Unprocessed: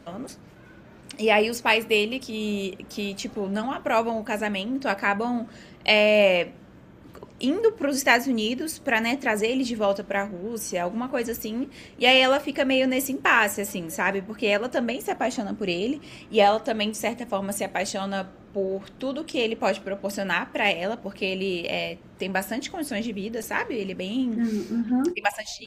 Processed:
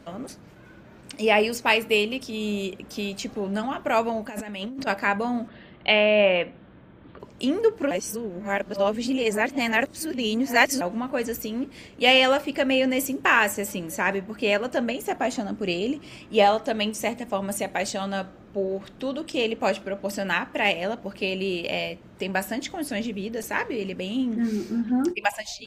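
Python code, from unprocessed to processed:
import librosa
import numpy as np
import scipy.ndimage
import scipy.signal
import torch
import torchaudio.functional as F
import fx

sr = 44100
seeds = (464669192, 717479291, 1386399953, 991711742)

y = fx.over_compress(x, sr, threshold_db=-34.0, ratio=-1.0, at=(4.28, 4.87))
y = fx.ellip_lowpass(y, sr, hz=3700.0, order=4, stop_db=60, at=(5.48, 7.2))
y = fx.edit(y, sr, fx.reverse_span(start_s=7.91, length_s=2.9), tone=tone)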